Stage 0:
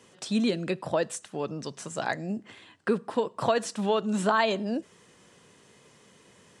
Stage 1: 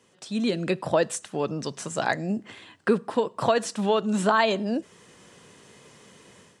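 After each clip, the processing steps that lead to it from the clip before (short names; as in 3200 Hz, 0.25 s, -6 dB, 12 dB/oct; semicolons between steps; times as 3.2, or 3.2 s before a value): AGC gain up to 11 dB; gain -5.5 dB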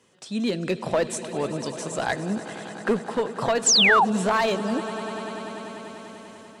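swelling echo 98 ms, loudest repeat 5, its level -17.5 dB; one-sided clip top -18 dBFS; painted sound fall, 3.66–4.05, 710–8300 Hz -17 dBFS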